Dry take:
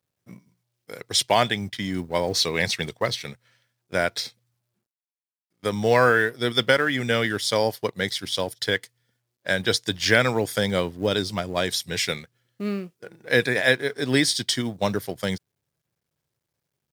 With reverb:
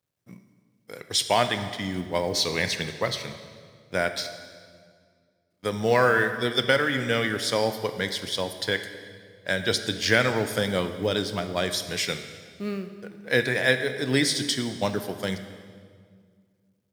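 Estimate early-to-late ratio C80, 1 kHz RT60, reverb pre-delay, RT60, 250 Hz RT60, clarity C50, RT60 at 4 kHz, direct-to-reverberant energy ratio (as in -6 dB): 11.0 dB, 1.8 s, 17 ms, 2.0 s, 2.4 s, 9.5 dB, 1.6 s, 8.5 dB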